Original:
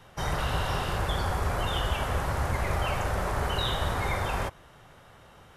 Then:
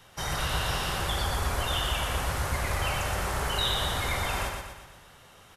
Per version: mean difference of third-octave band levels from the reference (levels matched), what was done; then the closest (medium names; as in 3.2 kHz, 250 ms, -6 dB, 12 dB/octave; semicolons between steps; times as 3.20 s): 4.5 dB: treble shelf 2.1 kHz +10.5 dB; on a send: feedback delay 120 ms, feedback 49%, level -4.5 dB; on the sum: trim -4.5 dB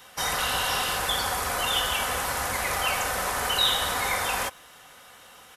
7.0 dB: tilt EQ +3.5 dB/octave; comb 4 ms, depth 39%; trim +2.5 dB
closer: first